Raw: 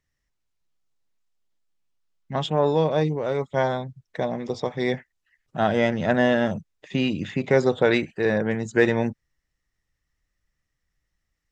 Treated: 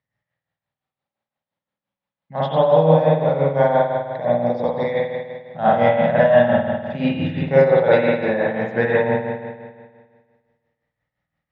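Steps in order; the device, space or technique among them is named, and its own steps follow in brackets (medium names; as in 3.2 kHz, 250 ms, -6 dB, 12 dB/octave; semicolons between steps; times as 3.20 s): combo amplifier with spring reverb and tremolo (spring tank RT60 1.7 s, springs 50 ms, chirp 50 ms, DRR -6.5 dB; tremolo 5.8 Hz, depth 59%; cabinet simulation 110–4200 Hz, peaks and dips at 110 Hz +5 dB, 160 Hz +5 dB, 370 Hz -9 dB, 560 Hz +8 dB, 830 Hz +7 dB, 2.8 kHz -4 dB); trim -2 dB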